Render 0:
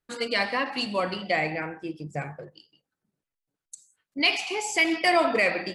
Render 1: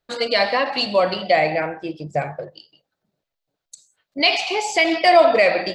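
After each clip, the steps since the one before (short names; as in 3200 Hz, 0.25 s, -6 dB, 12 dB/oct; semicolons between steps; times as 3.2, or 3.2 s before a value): fifteen-band EQ 250 Hz -3 dB, 630 Hz +10 dB, 4000 Hz +7 dB, 10000 Hz -10 dB; in parallel at -2 dB: limiter -16 dBFS, peak gain reduction 11.5 dB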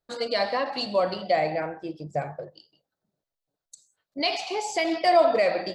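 bell 2500 Hz -7 dB 1.1 oct; gain -5.5 dB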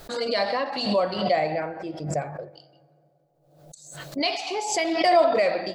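on a send at -21 dB: reverb RT60 2.6 s, pre-delay 3 ms; on the sum: backwards sustainer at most 63 dB/s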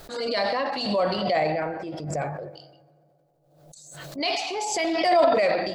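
transient shaper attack -6 dB, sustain +6 dB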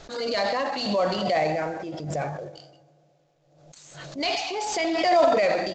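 CVSD 64 kbps; downsampling 16000 Hz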